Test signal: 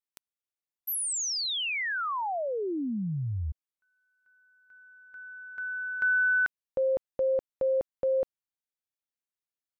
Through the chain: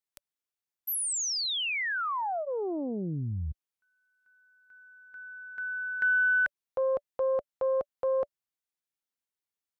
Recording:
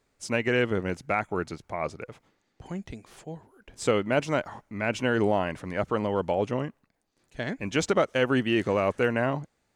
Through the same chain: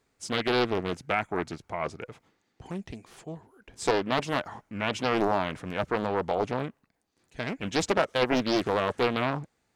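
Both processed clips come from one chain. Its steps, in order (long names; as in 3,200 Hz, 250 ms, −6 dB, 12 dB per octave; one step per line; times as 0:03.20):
high-pass filter 41 Hz 6 dB per octave
notch filter 580 Hz, Q 12
highs frequency-modulated by the lows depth 0.77 ms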